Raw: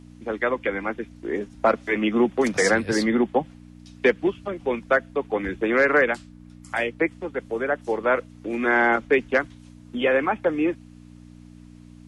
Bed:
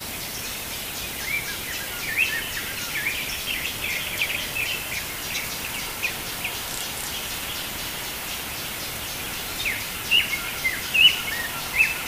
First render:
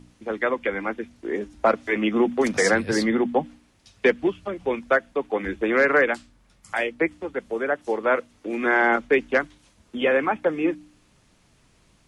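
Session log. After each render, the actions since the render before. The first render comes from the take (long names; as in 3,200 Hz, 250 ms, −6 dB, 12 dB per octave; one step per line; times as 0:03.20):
hum removal 60 Hz, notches 5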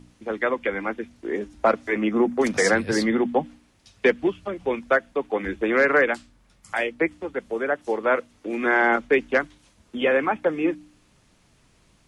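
0:01.78–0:02.38: parametric band 3,100 Hz −3 dB → −12 dB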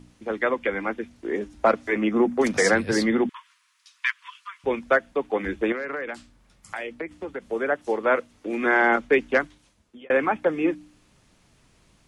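0:03.29–0:04.64: linear-phase brick-wall high-pass 930 Hz
0:05.72–0:07.50: downward compressor 10 to 1, threshold −27 dBFS
0:09.42–0:10.10: fade out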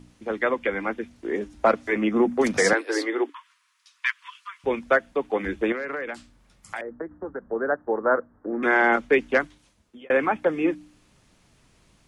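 0:02.73–0:04.06: Chebyshev high-pass with heavy ripple 280 Hz, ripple 3 dB
0:06.81–0:08.63: Butterworth low-pass 1,700 Hz 72 dB per octave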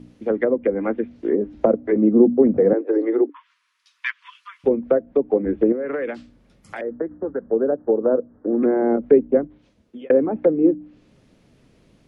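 octave-band graphic EQ 125/250/500/1,000/8,000 Hz +4/+7/+8/−4/−8 dB
treble cut that deepens with the level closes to 540 Hz, closed at −14 dBFS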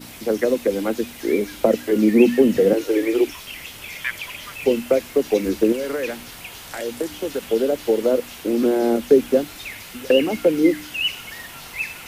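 mix in bed −8 dB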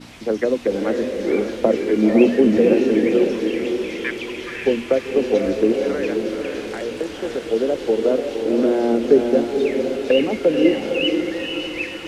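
high-frequency loss of the air 79 metres
feedback delay with all-pass diffusion 516 ms, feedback 43%, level −4 dB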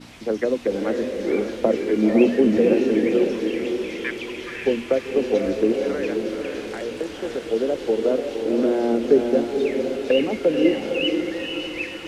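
level −2.5 dB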